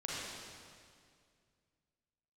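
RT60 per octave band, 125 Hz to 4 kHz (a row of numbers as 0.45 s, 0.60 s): 2.7 s, 2.5 s, 2.3 s, 2.1 s, 2.0 s, 1.9 s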